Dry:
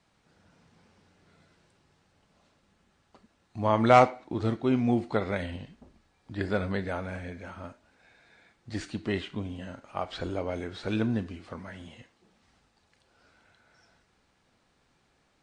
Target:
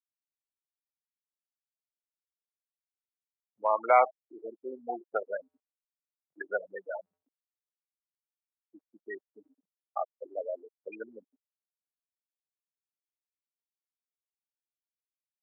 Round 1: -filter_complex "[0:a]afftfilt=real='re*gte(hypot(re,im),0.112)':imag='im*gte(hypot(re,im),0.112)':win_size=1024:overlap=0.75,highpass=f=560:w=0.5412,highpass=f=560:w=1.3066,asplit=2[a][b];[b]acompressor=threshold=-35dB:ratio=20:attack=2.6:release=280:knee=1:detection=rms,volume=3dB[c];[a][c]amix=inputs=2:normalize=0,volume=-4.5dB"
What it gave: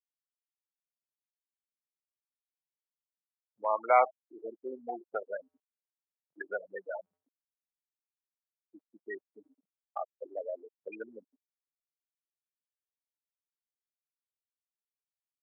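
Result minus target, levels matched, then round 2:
compressor: peak gain reduction +11 dB
-filter_complex "[0:a]afftfilt=real='re*gte(hypot(re,im),0.112)':imag='im*gte(hypot(re,im),0.112)':win_size=1024:overlap=0.75,highpass=f=560:w=0.5412,highpass=f=560:w=1.3066,asplit=2[a][b];[b]acompressor=threshold=-23.5dB:ratio=20:attack=2.6:release=280:knee=1:detection=rms,volume=3dB[c];[a][c]amix=inputs=2:normalize=0,volume=-4.5dB"

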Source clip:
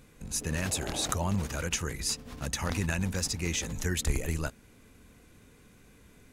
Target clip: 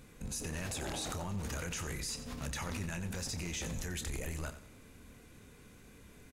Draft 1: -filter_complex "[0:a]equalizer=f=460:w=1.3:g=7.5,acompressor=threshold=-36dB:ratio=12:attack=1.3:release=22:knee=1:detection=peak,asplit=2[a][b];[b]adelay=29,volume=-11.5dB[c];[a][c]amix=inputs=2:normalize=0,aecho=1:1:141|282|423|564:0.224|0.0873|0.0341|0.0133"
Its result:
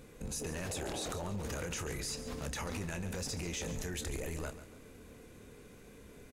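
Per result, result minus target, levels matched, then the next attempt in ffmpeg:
echo 51 ms late; 500 Hz band +4.0 dB
-filter_complex "[0:a]equalizer=f=460:w=1.3:g=7.5,acompressor=threshold=-36dB:ratio=12:attack=1.3:release=22:knee=1:detection=peak,asplit=2[a][b];[b]adelay=29,volume=-11.5dB[c];[a][c]amix=inputs=2:normalize=0,aecho=1:1:90|180|270|360:0.224|0.0873|0.0341|0.0133"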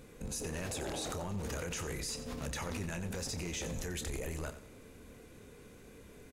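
500 Hz band +4.0 dB
-filter_complex "[0:a]acompressor=threshold=-36dB:ratio=12:attack=1.3:release=22:knee=1:detection=peak,asplit=2[a][b];[b]adelay=29,volume=-11.5dB[c];[a][c]amix=inputs=2:normalize=0,aecho=1:1:90|180|270|360:0.224|0.0873|0.0341|0.0133"

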